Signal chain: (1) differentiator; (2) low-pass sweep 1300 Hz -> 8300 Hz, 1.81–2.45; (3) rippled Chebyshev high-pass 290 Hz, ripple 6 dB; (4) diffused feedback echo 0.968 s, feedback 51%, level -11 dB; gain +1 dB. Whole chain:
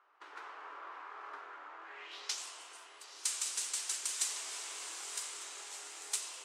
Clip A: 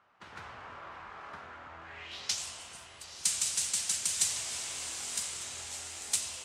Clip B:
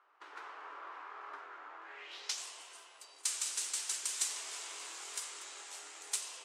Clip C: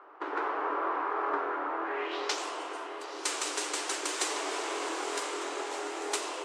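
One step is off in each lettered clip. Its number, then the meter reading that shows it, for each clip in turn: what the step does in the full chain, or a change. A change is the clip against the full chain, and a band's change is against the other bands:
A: 3, 1 kHz band -3.5 dB; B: 4, echo-to-direct -9.5 dB to none; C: 1, 500 Hz band +15.0 dB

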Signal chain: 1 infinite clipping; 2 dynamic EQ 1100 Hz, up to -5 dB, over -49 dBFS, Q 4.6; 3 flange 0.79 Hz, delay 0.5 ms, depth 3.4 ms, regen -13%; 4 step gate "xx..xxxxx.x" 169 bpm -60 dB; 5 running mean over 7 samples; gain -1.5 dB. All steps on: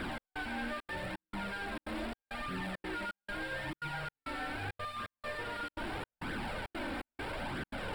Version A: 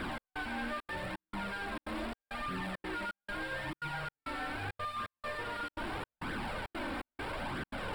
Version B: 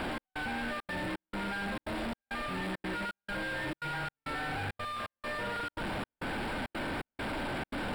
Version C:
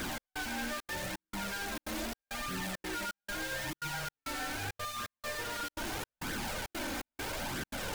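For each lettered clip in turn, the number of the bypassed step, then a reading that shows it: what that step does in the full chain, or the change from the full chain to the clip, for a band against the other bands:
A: 2, 1 kHz band +1.5 dB; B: 3, crest factor change -2.0 dB; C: 5, 8 kHz band +16.0 dB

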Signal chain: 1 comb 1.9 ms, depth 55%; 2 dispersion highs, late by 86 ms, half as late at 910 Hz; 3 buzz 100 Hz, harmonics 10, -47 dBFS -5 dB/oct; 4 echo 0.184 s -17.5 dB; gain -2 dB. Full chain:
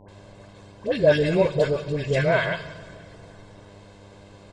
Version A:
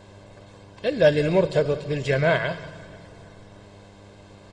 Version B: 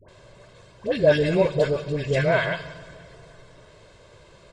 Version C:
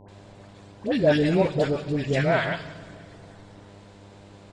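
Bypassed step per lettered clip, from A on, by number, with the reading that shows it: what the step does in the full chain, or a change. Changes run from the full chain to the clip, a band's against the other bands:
2, momentary loudness spread change -4 LU; 3, momentary loudness spread change -2 LU; 1, 250 Hz band +4.0 dB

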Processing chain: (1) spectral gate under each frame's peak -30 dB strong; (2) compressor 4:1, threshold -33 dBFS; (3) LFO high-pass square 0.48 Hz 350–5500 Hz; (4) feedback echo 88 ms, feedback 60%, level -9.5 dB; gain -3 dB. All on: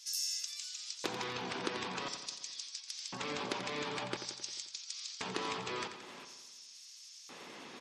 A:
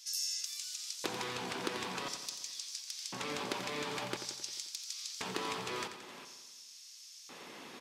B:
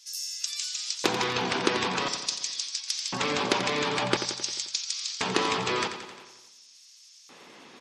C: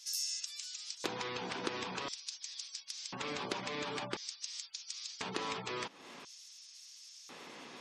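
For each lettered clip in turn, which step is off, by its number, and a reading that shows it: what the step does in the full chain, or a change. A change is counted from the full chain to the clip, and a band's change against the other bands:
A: 1, 8 kHz band +1.5 dB; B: 2, mean gain reduction 8.5 dB; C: 4, echo-to-direct -7.5 dB to none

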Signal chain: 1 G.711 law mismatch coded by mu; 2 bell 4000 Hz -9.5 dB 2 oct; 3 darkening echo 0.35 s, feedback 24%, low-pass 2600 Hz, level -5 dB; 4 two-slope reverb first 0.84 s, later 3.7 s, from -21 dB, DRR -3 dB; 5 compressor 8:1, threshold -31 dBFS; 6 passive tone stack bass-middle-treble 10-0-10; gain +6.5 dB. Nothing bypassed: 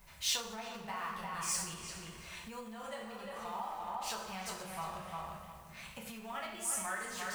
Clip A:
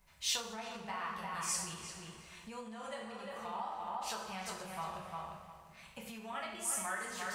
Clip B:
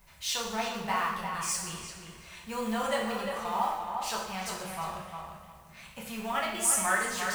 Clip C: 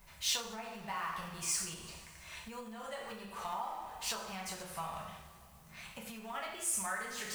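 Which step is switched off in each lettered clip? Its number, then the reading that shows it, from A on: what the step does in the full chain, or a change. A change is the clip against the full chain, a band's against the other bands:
1, distortion -22 dB; 5, mean gain reduction 7.0 dB; 3, momentary loudness spread change +3 LU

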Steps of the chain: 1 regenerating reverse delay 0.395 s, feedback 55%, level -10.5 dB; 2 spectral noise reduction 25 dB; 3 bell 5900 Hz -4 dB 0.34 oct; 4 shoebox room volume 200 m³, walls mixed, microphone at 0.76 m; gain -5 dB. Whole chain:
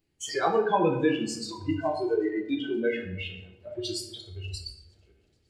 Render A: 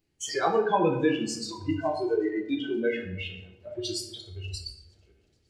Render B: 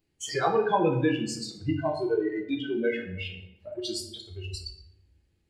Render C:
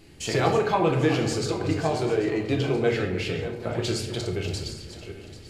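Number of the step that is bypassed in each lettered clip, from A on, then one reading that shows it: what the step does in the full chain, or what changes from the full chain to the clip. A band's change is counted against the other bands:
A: 3, 8 kHz band +2.0 dB; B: 1, 125 Hz band +3.0 dB; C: 2, 125 Hz band +7.5 dB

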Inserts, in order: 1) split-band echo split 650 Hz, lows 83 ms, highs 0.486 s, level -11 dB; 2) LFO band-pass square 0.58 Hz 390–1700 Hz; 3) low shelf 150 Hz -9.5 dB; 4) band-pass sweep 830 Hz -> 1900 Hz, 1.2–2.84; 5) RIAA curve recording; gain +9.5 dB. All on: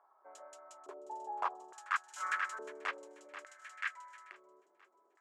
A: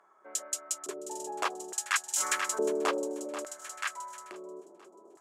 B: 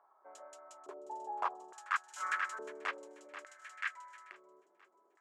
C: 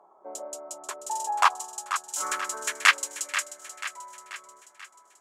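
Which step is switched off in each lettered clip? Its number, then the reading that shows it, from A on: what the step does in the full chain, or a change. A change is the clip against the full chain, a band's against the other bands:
4, 1 kHz band -13.0 dB; 3, 250 Hz band +1.5 dB; 2, 8 kHz band +12.0 dB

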